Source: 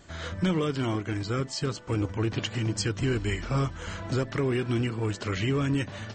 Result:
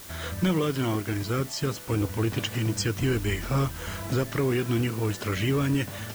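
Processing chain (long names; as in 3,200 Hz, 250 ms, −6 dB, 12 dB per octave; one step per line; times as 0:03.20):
notch filter 4,400 Hz
background noise white −46 dBFS
level +1.5 dB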